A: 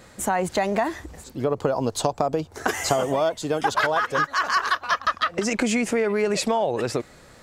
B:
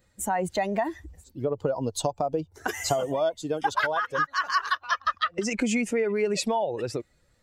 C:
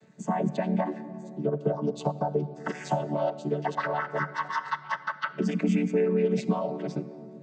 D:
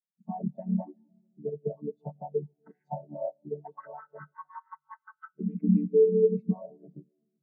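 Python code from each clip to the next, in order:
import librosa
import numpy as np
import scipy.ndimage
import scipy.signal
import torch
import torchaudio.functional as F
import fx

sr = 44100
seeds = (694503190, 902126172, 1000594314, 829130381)

y1 = fx.bin_expand(x, sr, power=1.5)
y1 = y1 * librosa.db_to_amplitude(-1.0)
y2 = fx.chord_vocoder(y1, sr, chord='major triad', root=50)
y2 = fx.room_shoebox(y2, sr, seeds[0], volume_m3=3100.0, walls='mixed', distance_m=0.51)
y2 = fx.band_squash(y2, sr, depth_pct=40)
y3 = fx.spectral_expand(y2, sr, expansion=2.5)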